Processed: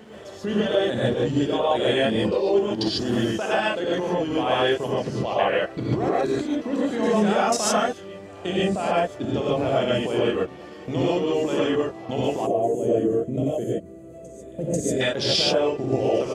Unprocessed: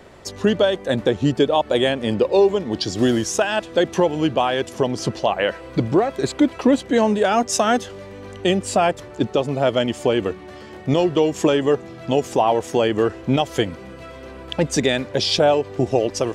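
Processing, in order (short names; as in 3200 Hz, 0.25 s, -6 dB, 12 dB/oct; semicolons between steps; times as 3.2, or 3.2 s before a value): harmoniser -3 st -12 dB; HPF 94 Hz 12 dB/oct; level quantiser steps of 23 dB; reverse echo 0.491 s -21.5 dB; non-linear reverb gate 0.17 s rising, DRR -7 dB; spectral gain 12.46–15.01, 720–6200 Hz -18 dB; gain -4.5 dB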